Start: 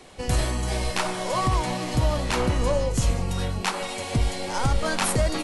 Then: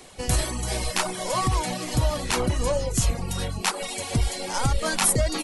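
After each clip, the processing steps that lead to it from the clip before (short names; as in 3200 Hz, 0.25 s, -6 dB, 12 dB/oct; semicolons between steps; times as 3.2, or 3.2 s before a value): reverb removal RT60 0.67 s; high shelf 6300 Hz +10.5 dB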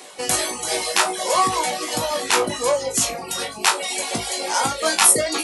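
HPF 360 Hz 12 dB/oct; reverb removal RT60 0.57 s; flutter echo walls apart 3.2 m, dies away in 0.2 s; gain +6.5 dB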